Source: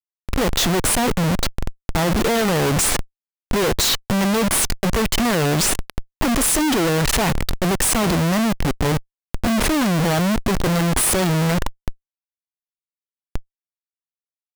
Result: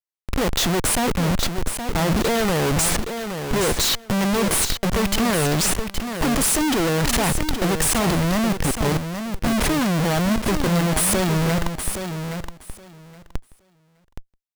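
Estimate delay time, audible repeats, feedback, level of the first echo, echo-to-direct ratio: 0.82 s, 2, 16%, -8.0 dB, -8.0 dB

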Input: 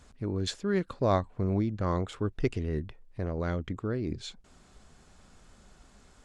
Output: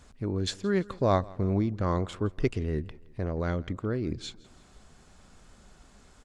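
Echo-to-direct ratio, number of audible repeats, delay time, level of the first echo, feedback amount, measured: -21.5 dB, 2, 0.167 s, -22.5 dB, 47%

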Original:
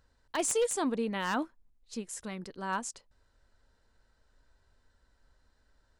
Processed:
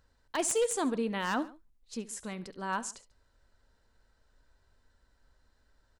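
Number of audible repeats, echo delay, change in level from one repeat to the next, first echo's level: 2, 70 ms, -5.5 dB, -18.0 dB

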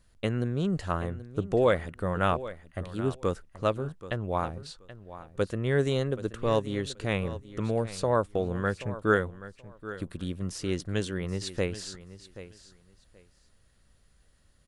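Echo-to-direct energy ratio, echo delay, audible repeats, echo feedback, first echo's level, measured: -15.0 dB, 0.779 s, 2, 19%, -15.0 dB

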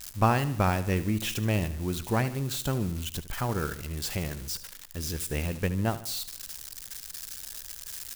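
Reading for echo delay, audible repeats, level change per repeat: 74 ms, 4, -6.5 dB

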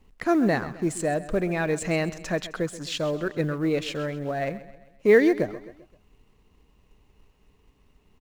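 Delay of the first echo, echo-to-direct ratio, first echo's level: 0.131 s, -15.0 dB, -16.0 dB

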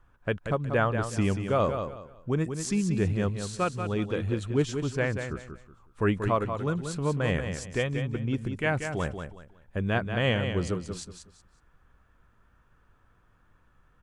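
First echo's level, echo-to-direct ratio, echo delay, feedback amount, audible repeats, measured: -7.5 dB, -7.0 dB, 0.185 s, 27%, 3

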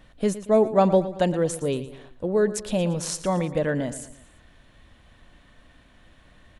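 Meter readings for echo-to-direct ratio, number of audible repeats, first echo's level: -13.5 dB, 3, -14.5 dB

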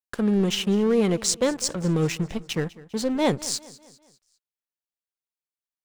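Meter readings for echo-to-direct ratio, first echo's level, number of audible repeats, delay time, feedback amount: -19.0 dB, -20.0 dB, 3, 0.2 s, 47%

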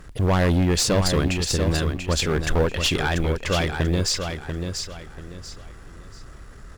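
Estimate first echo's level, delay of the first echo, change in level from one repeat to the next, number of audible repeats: -6.5 dB, 0.688 s, -10.0 dB, 3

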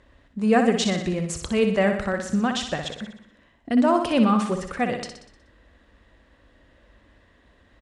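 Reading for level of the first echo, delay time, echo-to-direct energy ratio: -7.0 dB, 61 ms, -5.5 dB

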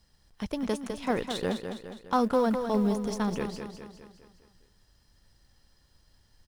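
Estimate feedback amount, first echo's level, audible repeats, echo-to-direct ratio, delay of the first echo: 51%, -7.5 dB, 5, -6.0 dB, 0.205 s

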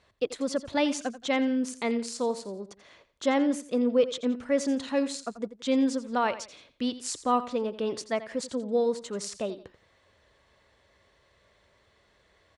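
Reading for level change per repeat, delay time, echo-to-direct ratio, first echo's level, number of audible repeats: -10.0 dB, 86 ms, -14.0 dB, -14.5 dB, 2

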